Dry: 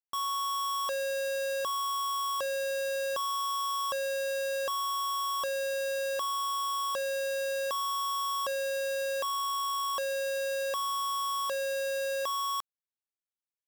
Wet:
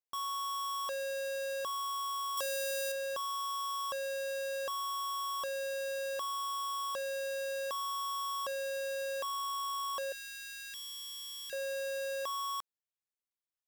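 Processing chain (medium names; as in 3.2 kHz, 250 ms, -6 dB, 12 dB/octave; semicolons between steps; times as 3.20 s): 2.37–2.92 s: treble shelf 3.5 kHz +10 dB; 10.12–11.53 s: Chebyshev band-stop 190–1700 Hz, order 4; trim -5 dB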